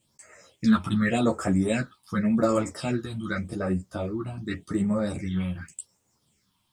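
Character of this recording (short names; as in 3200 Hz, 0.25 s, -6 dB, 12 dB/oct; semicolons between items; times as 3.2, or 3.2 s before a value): phasing stages 6, 0.87 Hz, lowest notch 480–3800 Hz; a quantiser's noise floor 12-bit, dither none; a shimmering, thickened sound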